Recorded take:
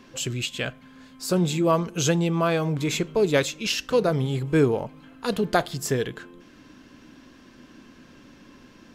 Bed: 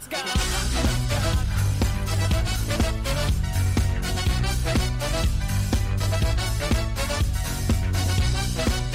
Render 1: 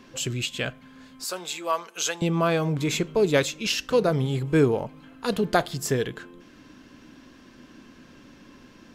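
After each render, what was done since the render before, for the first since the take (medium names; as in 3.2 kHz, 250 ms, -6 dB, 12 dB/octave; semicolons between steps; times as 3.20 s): 1.24–2.22 s: high-pass 830 Hz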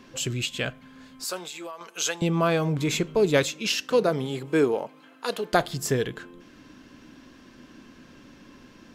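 1.38–1.81 s: compression 20:1, threshold -33 dBFS; 3.48–5.52 s: high-pass 130 Hz -> 490 Hz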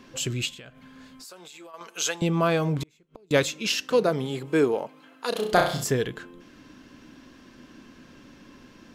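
0.53–1.74 s: compression, threshold -42 dBFS; 2.78–3.31 s: inverted gate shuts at -20 dBFS, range -36 dB; 5.29–5.84 s: flutter echo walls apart 5.6 m, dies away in 0.51 s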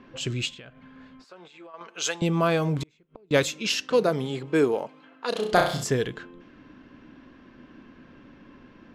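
level-controlled noise filter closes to 2.2 kHz, open at -20.5 dBFS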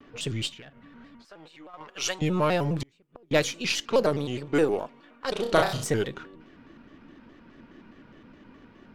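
partial rectifier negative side -3 dB; vibrato with a chosen wave square 4.8 Hz, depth 160 cents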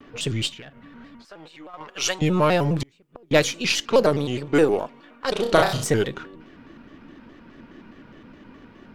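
trim +5 dB; peak limiter -3 dBFS, peak gain reduction 2 dB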